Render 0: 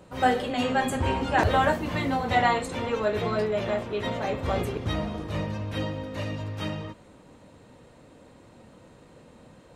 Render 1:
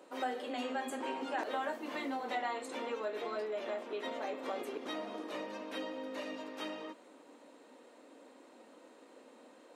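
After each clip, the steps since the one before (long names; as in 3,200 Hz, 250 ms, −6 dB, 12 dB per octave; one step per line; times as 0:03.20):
elliptic high-pass filter 260 Hz, stop band 70 dB
downward compressor 2.5 to 1, threshold −35 dBFS, peak gain reduction 12 dB
level −3.5 dB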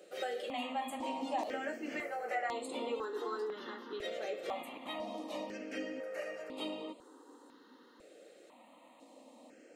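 step-sequenced phaser 2 Hz 260–5,800 Hz
level +3 dB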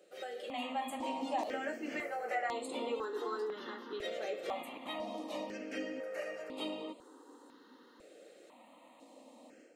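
automatic gain control gain up to 7 dB
level −6.5 dB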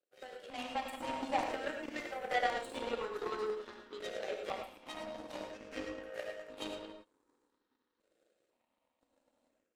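power curve on the samples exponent 2
reverb whose tail is shaped and stops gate 130 ms rising, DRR 4 dB
level +6 dB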